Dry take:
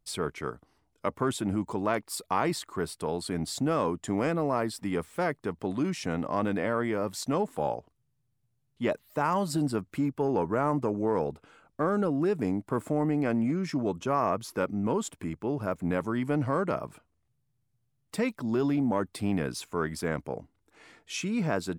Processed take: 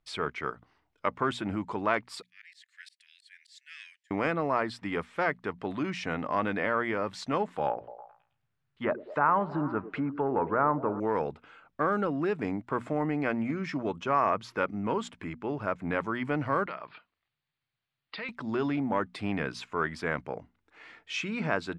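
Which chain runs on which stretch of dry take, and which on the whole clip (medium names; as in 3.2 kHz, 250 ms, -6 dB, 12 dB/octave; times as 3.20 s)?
2.22–4.11 s: Chebyshev high-pass 1.7 kHz, order 6 + treble shelf 5.8 kHz +8.5 dB + slow attack 486 ms
7.66–11.00 s: low-pass that closes with the level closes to 1.2 kHz, closed at -26 dBFS + peaking EQ 1.4 kHz +6 dB 1 oct + repeats whose band climbs or falls 107 ms, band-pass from 340 Hz, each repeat 0.7 oct, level -10.5 dB
16.66–18.29 s: steep low-pass 4.8 kHz 96 dB/octave + tilt EQ +3.5 dB/octave + compression 3:1, threshold -37 dBFS
whole clip: low-pass 2.1 kHz 12 dB/octave; tilt shelf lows -8.5 dB, about 1.3 kHz; hum notches 60/120/180/240 Hz; trim +4.5 dB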